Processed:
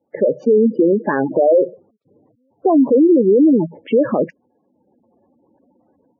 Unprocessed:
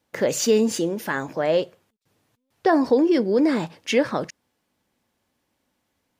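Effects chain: de-esser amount 70%; low-pass 1.6 kHz 6 dB/octave; spectral gate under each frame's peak -10 dB strong; high-pass 400 Hz 12 dB/octave; tilt EQ -4.5 dB/octave; level rider gain up to 13 dB; peak limiter -12 dBFS, peak gain reduction 11 dB; trim +5.5 dB

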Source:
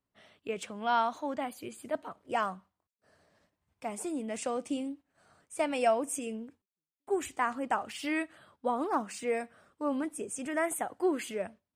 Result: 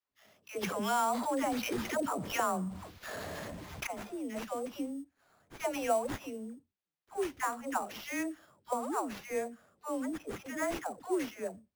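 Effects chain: phase dispersion lows, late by 112 ms, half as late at 570 Hz; sample-rate reducer 8.5 kHz, jitter 0%; 0.63–3.87 s: level flattener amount 70%; trim -3.5 dB

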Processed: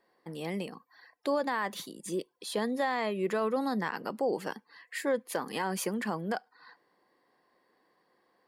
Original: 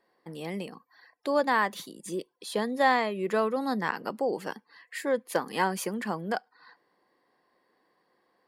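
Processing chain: peak limiter -20.5 dBFS, peak gain reduction 10 dB

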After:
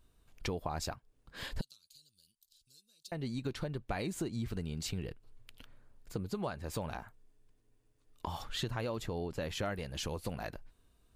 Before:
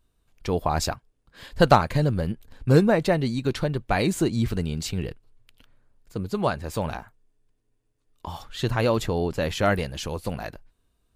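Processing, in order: compression 5:1, threshold -37 dBFS, peak gain reduction 23.5 dB; 1.61–3.12 s: inverse Chebyshev high-pass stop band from 2.1 kHz, stop band 40 dB; trim +1.5 dB

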